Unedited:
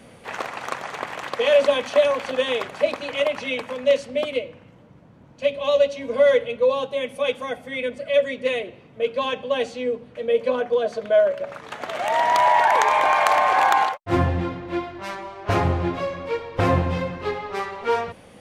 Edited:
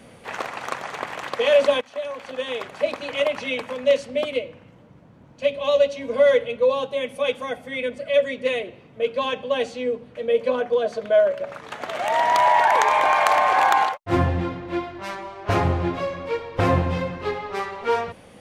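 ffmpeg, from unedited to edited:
-filter_complex "[0:a]asplit=2[a][b];[a]atrim=end=1.81,asetpts=PTS-STARTPTS,afade=t=out:st=1.806:d=0.004:c=hsin:silence=0.112202[c];[b]atrim=start=1.81,asetpts=PTS-STARTPTS,afade=t=in:d=1.38:silence=0.112202[d];[c][d]concat=n=2:v=0:a=1"

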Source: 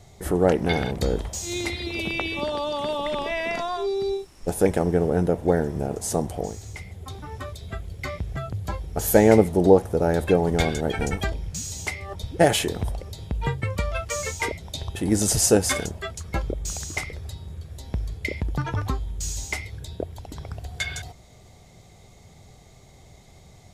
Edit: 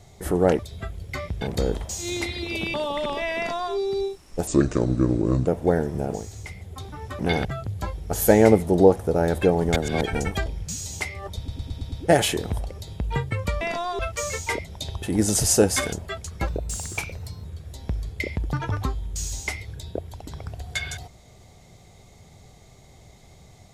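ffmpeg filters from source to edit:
-filter_complex "[0:a]asplit=20[a][b][c][d][e][f][g][h][i][j][k][l][m][n][o][p][q][r][s][t];[a]atrim=end=0.592[u];[b]atrim=start=7.488:end=8.312[v];[c]atrim=start=0.848:end=2.182[w];[d]atrim=start=2.828:end=4.564[x];[e]atrim=start=4.56:end=5.28,asetpts=PTS-STARTPTS,asetrate=31752,aresample=44100[y];[f]atrim=start=5.276:end=5.952[z];[g]atrim=start=6.438:end=7.492[aa];[h]atrim=start=0.588:end=0.852[ab];[i]atrim=start=8.308:end=10.622[ac];[j]atrim=start=10.618:end=10.872,asetpts=PTS-STARTPTS,areverse[ad];[k]atrim=start=10.868:end=12.342[ae];[l]atrim=start=12.228:end=12.342[af];[m]atrim=start=12.228:end=12.342[ag];[n]atrim=start=12.228:end=12.342[ah];[o]atrim=start=12.228:end=12.342[ai];[p]atrim=start=12.228:end=13.922[aj];[q]atrim=start=3.448:end=3.832[ak];[r]atrim=start=13.918:end=16.404[al];[s]atrim=start=16.4:end=17.49,asetpts=PTS-STARTPTS,asetrate=49392,aresample=44100[am];[t]atrim=start=17.486[an];[u][v]acrossfade=d=0.004:c1=hsin:c2=hsin[ao];[ao][w]acrossfade=d=0.004:c1=hsin:c2=hsin[ap];[ap][x]acrossfade=d=0.004:c1=hsin:c2=hsin[aq];[aq][y]acrossfade=d=0.004:c1=hsin:c2=hsin[ar];[ar][z]acrossfade=d=0.004:c1=hsin:c2=hsin[as];[as][aa]acrossfade=d=0.004:c1=hsin:c2=hsin[at];[at][ab]acrossfade=d=0.004:c1=hsin:c2=hsin[au];[au][ac]acrossfade=d=0.004:c1=hsin:c2=hsin[av];[av][ad]acrossfade=d=0.004:c1=hsin:c2=hsin[aw];[aw][ae]acrossfade=d=0.004:c1=hsin:c2=hsin[ax];[ax][af]acrossfade=d=0.004:c1=hsin:c2=hsin[ay];[ay][ag]acrossfade=d=0.004:c1=hsin:c2=hsin[az];[az][ah]acrossfade=d=0.004:c1=hsin:c2=hsin[ba];[ba][ai]acrossfade=d=0.004:c1=hsin:c2=hsin[bb];[bb][aj]acrossfade=d=0.004:c1=hsin:c2=hsin[bc];[bc][ak]acrossfade=d=0.004:c1=hsin:c2=hsin[bd];[bd][al]acrossfade=d=0.004:c1=hsin:c2=hsin[be];[be][am]acrossfade=d=0.004:c1=hsin:c2=hsin[bf];[bf][an]acrossfade=d=0.004:c1=hsin:c2=hsin"

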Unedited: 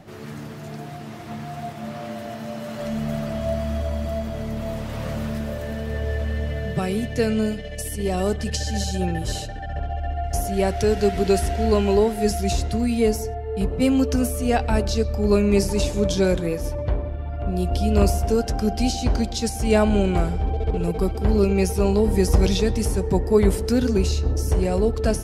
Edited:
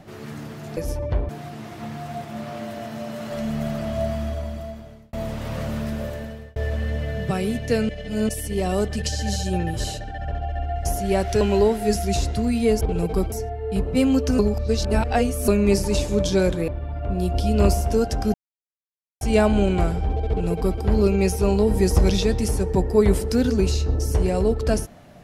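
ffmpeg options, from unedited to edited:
-filter_complex "[0:a]asplit=15[a][b][c][d][e][f][g][h][i][j][k][l][m][n][o];[a]atrim=end=0.772[p];[b]atrim=start=16.528:end=17.052[q];[c]atrim=start=0.768:end=4.61,asetpts=PTS-STARTPTS,afade=t=out:st=2.802:d=1.04[r];[d]atrim=start=4.61:end=6.04,asetpts=PTS-STARTPTS,afade=t=in:d=0.004:c=hsin,afade=t=out:st=0.94:d=0.49[s];[e]atrim=start=6.04:end=7.372,asetpts=PTS-STARTPTS,afade=t=in:d=0.004:c=hsin[t];[f]atrim=start=7.368:end=7.772,asetpts=PTS-STARTPTS,areverse[u];[g]atrim=start=7.768:end=10.892[v];[h]atrim=start=11.768:end=13.172[w];[i]atrim=start=20.658:end=21.172[x];[j]atrim=start=13.168:end=14.242[y];[k]atrim=start=14.238:end=15.332,asetpts=PTS-STARTPTS,areverse[z];[l]atrim=start=15.328:end=16.532[aa];[m]atrim=start=17.048:end=18.71,asetpts=PTS-STARTPTS,afade=t=out:st=1.658:d=0.004:c=hsin[ab];[n]atrim=start=18.71:end=19.58,asetpts=PTS-STARTPTS,volume=0[ac];[o]atrim=start=19.58,asetpts=PTS-STARTPTS,afade=t=in:d=0.004:c=hsin[ad];[p][q]acrossfade=d=0.004:c1=hsin:c2=hsin[ae];[r][s][t]concat=n=3:v=0:a=1[af];[ae][af]acrossfade=d=0.004:c1=hsin:c2=hsin[ag];[ag][u]acrossfade=d=0.004:c1=hsin:c2=hsin[ah];[ah][v]acrossfade=d=0.004:c1=hsin:c2=hsin[ai];[ai][w]acrossfade=d=0.004:c1=hsin:c2=hsin[aj];[aj][x]acrossfade=d=0.004:c1=hsin:c2=hsin[ak];[ak][y]acrossfade=d=0.004:c1=hsin:c2=hsin[al];[al][z]acrossfade=d=0.004:c1=hsin:c2=hsin[am];[am][aa]acrossfade=d=0.004:c1=hsin:c2=hsin[an];[ab][ac][ad]concat=n=3:v=0:a=1[ao];[an][ao]acrossfade=d=0.004:c1=hsin:c2=hsin"

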